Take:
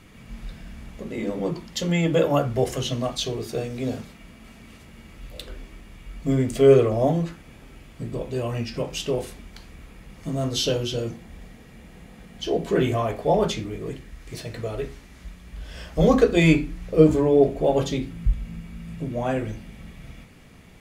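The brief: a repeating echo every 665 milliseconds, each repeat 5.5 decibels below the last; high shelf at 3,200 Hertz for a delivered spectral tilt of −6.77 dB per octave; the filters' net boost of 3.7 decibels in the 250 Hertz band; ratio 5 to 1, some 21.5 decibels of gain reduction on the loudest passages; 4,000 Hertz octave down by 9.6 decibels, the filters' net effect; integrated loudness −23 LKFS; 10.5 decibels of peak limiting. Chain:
parametric band 250 Hz +5 dB
high-shelf EQ 3,200 Hz −7.5 dB
parametric band 4,000 Hz −7.5 dB
downward compressor 5 to 1, threshold −33 dBFS
brickwall limiter −32.5 dBFS
repeating echo 665 ms, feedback 53%, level −5.5 dB
level +17.5 dB

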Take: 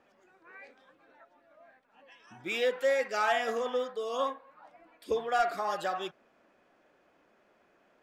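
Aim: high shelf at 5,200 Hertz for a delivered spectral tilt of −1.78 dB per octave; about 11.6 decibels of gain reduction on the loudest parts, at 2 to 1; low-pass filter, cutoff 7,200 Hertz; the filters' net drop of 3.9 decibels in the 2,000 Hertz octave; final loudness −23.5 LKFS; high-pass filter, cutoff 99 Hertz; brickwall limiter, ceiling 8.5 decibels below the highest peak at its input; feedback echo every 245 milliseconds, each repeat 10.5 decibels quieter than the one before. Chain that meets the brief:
high-pass filter 99 Hz
low-pass filter 7,200 Hz
parametric band 2,000 Hz −4.5 dB
high-shelf EQ 5,200 Hz −4.5 dB
downward compressor 2 to 1, threshold −46 dBFS
brickwall limiter −36.5 dBFS
repeating echo 245 ms, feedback 30%, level −10.5 dB
level +22.5 dB

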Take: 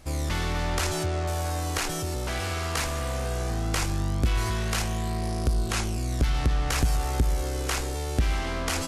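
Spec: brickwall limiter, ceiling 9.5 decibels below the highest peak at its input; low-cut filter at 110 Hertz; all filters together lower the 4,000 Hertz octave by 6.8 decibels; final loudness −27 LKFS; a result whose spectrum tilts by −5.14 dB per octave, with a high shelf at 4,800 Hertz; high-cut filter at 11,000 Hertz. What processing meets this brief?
high-pass filter 110 Hz
low-pass filter 11,000 Hz
parametric band 4,000 Hz −5.5 dB
high-shelf EQ 4,800 Hz −7 dB
level +7 dB
brickwall limiter −17 dBFS

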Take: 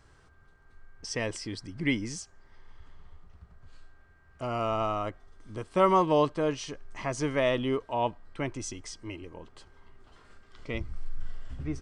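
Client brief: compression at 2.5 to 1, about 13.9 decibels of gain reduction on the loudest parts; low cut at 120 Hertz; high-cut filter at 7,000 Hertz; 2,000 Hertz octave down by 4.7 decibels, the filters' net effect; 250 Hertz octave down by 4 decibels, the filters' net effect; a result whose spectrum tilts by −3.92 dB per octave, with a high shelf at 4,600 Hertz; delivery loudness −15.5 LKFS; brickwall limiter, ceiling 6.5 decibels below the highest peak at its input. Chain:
high-pass filter 120 Hz
low-pass filter 7,000 Hz
parametric band 250 Hz −5 dB
parametric band 2,000 Hz −6.5 dB
high-shelf EQ 4,600 Hz +6 dB
downward compressor 2.5 to 1, threshold −42 dBFS
level +29 dB
brickwall limiter −3.5 dBFS

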